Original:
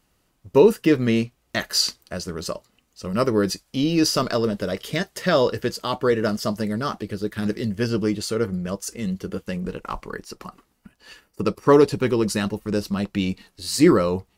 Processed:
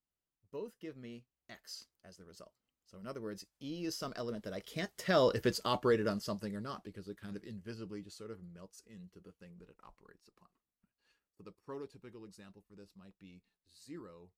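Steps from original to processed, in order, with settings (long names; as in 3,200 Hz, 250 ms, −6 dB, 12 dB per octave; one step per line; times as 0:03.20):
source passing by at 0:05.54, 12 m/s, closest 4.3 metres
level −6.5 dB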